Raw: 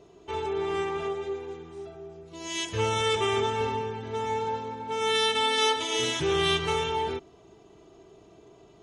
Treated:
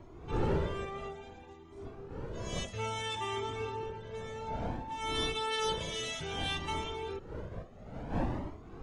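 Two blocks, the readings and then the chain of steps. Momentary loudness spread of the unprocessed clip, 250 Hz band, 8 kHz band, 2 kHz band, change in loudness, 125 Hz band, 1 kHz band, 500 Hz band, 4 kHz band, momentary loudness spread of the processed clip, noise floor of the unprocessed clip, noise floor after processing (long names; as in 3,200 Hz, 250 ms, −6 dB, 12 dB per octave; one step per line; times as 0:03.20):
17 LU, −3.5 dB, −9.0 dB, −9.0 dB, −9.0 dB, −1.5 dB, −8.5 dB, −9.5 dB, −9.5 dB, 14 LU, −55 dBFS, −51 dBFS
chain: wind on the microphone 420 Hz −31 dBFS
flanger whose copies keep moving one way rising 0.59 Hz
level −5 dB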